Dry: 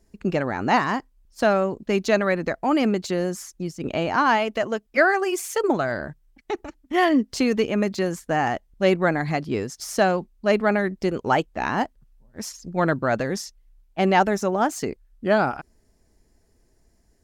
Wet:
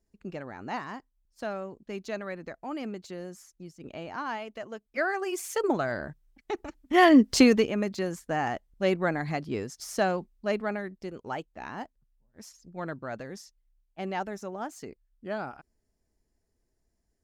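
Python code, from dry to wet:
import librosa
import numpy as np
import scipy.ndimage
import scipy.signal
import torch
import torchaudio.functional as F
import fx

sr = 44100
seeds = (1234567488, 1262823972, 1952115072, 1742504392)

y = fx.gain(x, sr, db=fx.line((4.65, -15.0), (5.51, -5.0), (6.51, -5.0), (7.39, 5.0), (7.75, -6.5), (10.31, -6.5), (11.01, -14.5)))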